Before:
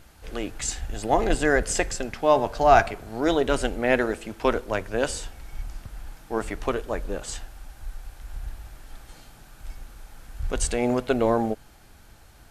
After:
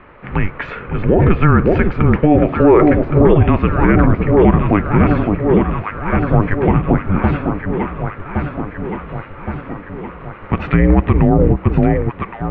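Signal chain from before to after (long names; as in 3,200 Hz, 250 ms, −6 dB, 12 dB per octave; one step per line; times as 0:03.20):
single-sideband voice off tune −310 Hz 260–2,600 Hz
delay that swaps between a low-pass and a high-pass 559 ms, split 860 Hz, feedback 76%, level −6 dB
dynamic equaliser 1,500 Hz, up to −5 dB, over −38 dBFS, Q 1.1
boost into a limiter +17.5 dB
level −1 dB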